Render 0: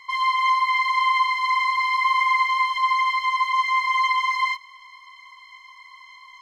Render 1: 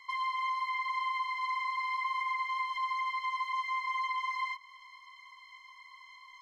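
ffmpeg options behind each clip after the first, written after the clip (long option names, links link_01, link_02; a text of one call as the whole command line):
ffmpeg -i in.wav -filter_complex "[0:a]acrossover=split=450|2200[link_01][link_02][link_03];[link_01]acompressor=threshold=-57dB:ratio=4[link_04];[link_02]acompressor=threshold=-25dB:ratio=4[link_05];[link_03]acompressor=threshold=-39dB:ratio=4[link_06];[link_04][link_05][link_06]amix=inputs=3:normalize=0,volume=-7.5dB" out.wav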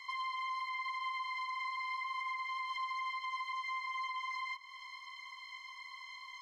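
ffmpeg -i in.wav -af "equalizer=frequency=4700:width=0.5:gain=5,alimiter=level_in=10dB:limit=-24dB:level=0:latency=1:release=291,volume=-10dB,volume=1.5dB" out.wav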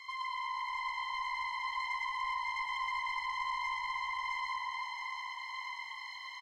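ffmpeg -i in.wav -filter_complex "[0:a]asplit=2[link_01][link_02];[link_02]aecho=0:1:660|1155|1526|1805|2014:0.631|0.398|0.251|0.158|0.1[link_03];[link_01][link_03]amix=inputs=2:normalize=0,asoftclip=type=tanh:threshold=-31dB,asplit=2[link_04][link_05];[link_05]asplit=6[link_06][link_07][link_08][link_09][link_10][link_11];[link_06]adelay=118,afreqshift=-53,volume=-4dB[link_12];[link_07]adelay=236,afreqshift=-106,volume=-10dB[link_13];[link_08]adelay=354,afreqshift=-159,volume=-16dB[link_14];[link_09]adelay=472,afreqshift=-212,volume=-22.1dB[link_15];[link_10]adelay=590,afreqshift=-265,volume=-28.1dB[link_16];[link_11]adelay=708,afreqshift=-318,volume=-34.1dB[link_17];[link_12][link_13][link_14][link_15][link_16][link_17]amix=inputs=6:normalize=0[link_18];[link_04][link_18]amix=inputs=2:normalize=0" out.wav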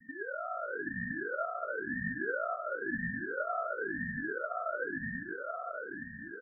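ffmpeg -i in.wav -af "asuperpass=centerf=860:order=12:qfactor=2.6,aecho=1:1:650|1072|1347|1526|1642:0.631|0.398|0.251|0.158|0.1,aeval=exprs='val(0)*sin(2*PI*560*n/s+560*0.45/0.98*sin(2*PI*0.98*n/s))':channel_layout=same,volume=5.5dB" out.wav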